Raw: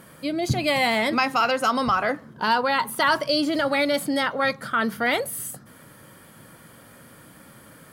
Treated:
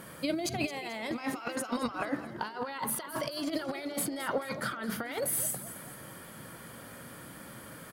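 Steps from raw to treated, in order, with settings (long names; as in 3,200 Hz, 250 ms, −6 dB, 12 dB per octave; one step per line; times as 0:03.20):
mains-hum notches 50/100/150/200/250/300 Hz
compressor whose output falls as the input rises −28 dBFS, ratio −0.5
on a send: echo with shifted repeats 218 ms, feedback 46%, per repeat +59 Hz, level −13.5 dB
on the sum: level −5 dB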